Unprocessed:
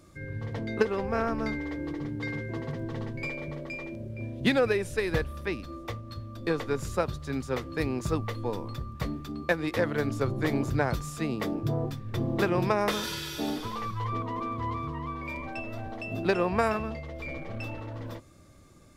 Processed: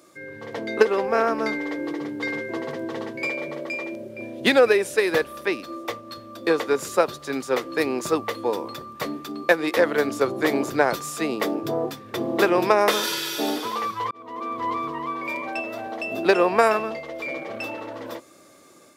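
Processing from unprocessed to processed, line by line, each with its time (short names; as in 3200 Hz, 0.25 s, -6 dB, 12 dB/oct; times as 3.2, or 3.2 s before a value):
14.11–14.71 fade in
whole clip: high shelf 9900 Hz +5 dB; AGC gain up to 3.5 dB; Chebyshev high-pass 390 Hz, order 2; gain +5.5 dB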